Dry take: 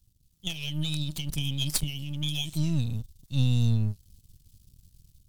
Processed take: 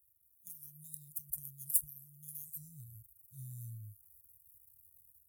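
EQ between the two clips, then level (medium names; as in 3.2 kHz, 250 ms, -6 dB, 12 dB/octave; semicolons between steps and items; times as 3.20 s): high-pass 140 Hz 24 dB/octave; inverse Chebyshev band-stop 300–2800 Hz, stop band 80 dB; treble shelf 8 kHz -4.5 dB; +11.5 dB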